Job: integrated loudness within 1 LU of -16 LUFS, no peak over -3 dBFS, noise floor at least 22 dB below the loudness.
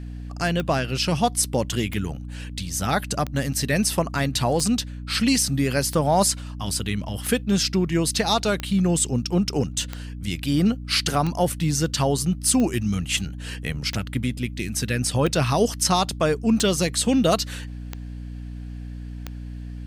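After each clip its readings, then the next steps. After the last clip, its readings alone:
clicks found 15; hum 60 Hz; highest harmonic 300 Hz; hum level -31 dBFS; loudness -23.0 LUFS; peak level -5.0 dBFS; loudness target -16.0 LUFS
-> de-click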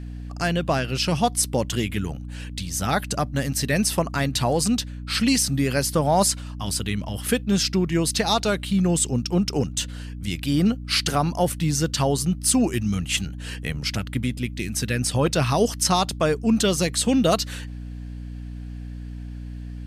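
clicks found 0; hum 60 Hz; highest harmonic 300 Hz; hum level -31 dBFS
-> de-hum 60 Hz, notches 5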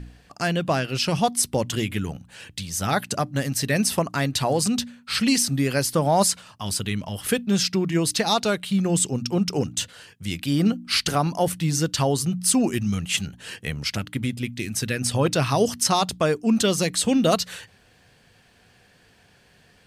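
hum not found; loudness -23.0 LUFS; peak level -5.5 dBFS; loudness target -16.0 LUFS
-> trim +7 dB; peak limiter -3 dBFS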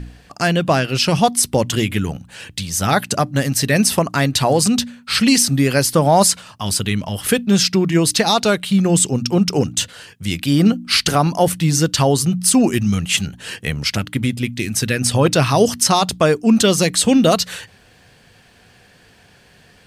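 loudness -16.5 LUFS; peak level -3.0 dBFS; noise floor -50 dBFS

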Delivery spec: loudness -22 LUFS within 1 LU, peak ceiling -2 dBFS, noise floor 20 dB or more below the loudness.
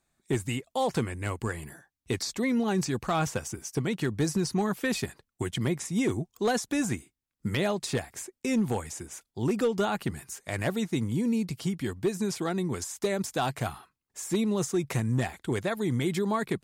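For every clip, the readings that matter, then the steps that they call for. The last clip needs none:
clipped samples 0.5%; clipping level -19.5 dBFS; loudness -30.0 LUFS; peak level -19.5 dBFS; loudness target -22.0 LUFS
-> clip repair -19.5 dBFS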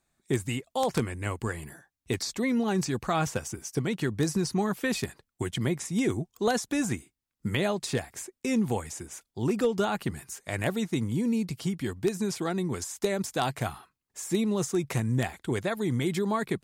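clipped samples 0.0%; loudness -30.0 LUFS; peak level -10.5 dBFS; loudness target -22.0 LUFS
-> trim +8 dB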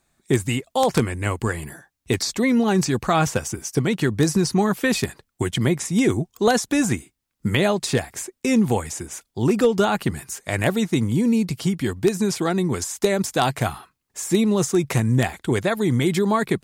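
loudness -22.0 LUFS; peak level -2.5 dBFS; noise floor -77 dBFS

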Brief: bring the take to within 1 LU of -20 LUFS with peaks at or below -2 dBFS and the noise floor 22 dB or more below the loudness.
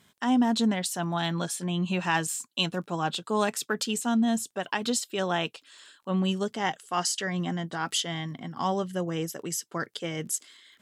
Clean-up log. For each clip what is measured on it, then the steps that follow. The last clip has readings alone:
tick rate 21 per s; loudness -29.0 LUFS; peak level -12.0 dBFS; loudness target -20.0 LUFS
-> de-click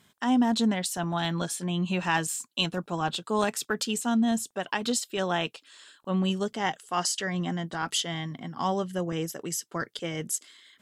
tick rate 0 per s; loudness -29.0 LUFS; peak level -12.0 dBFS; loudness target -20.0 LUFS
-> trim +9 dB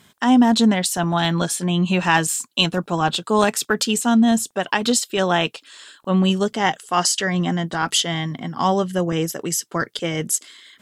loudness -20.0 LUFS; peak level -3.0 dBFS; noise floor -58 dBFS

